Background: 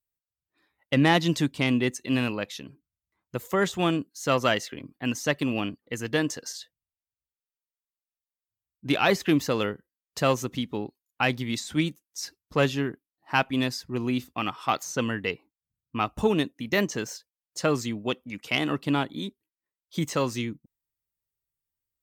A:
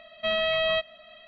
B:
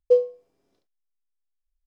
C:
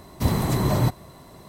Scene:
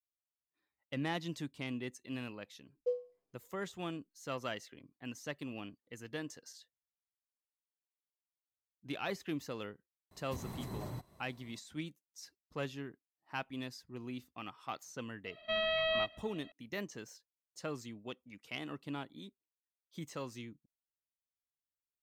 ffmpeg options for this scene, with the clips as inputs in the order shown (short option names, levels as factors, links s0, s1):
-filter_complex "[0:a]volume=0.15[s0];[3:a]alimiter=limit=0.158:level=0:latency=1:release=180[s1];[2:a]atrim=end=1.86,asetpts=PTS-STARTPTS,volume=0.141,afade=t=in:d=0.004:c=hsin,afade=t=out:st=1.856:d=0.004:c=hsin,adelay=2760[s2];[s1]atrim=end=1.48,asetpts=PTS-STARTPTS,volume=0.126,afade=t=in:d=0.004:c=hsin,afade=t=out:st=1.476:d=0.004:c=hsin,adelay=10110[s3];[1:a]atrim=end=1.27,asetpts=PTS-STARTPTS,volume=0.422,afade=t=in:d=0.004:c=hsin,afade=t=out:st=1.266:d=0.004:c=hsin,adelay=15250[s4];[s0][s2][s3][s4]amix=inputs=4:normalize=0"